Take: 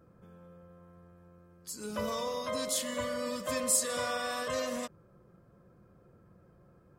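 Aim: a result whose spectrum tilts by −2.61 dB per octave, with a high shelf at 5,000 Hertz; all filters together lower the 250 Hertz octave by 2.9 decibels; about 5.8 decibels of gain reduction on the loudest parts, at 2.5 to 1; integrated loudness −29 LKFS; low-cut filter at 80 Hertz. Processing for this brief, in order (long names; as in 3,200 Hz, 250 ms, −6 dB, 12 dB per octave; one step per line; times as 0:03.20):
high-pass filter 80 Hz
parametric band 250 Hz −3 dB
high-shelf EQ 5,000 Hz −8 dB
downward compressor 2.5 to 1, threshold −38 dBFS
level +11 dB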